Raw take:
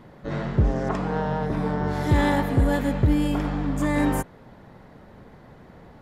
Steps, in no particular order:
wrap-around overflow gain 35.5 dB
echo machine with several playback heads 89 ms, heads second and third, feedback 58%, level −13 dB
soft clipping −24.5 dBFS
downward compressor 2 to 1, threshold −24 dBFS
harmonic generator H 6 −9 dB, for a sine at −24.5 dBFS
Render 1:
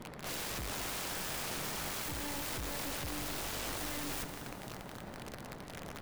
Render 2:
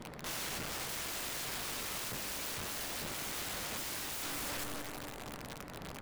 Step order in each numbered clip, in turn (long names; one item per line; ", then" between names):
harmonic generator, then soft clipping, then downward compressor, then wrap-around overflow, then echo machine with several playback heads
echo machine with several playback heads, then soft clipping, then harmonic generator, then wrap-around overflow, then downward compressor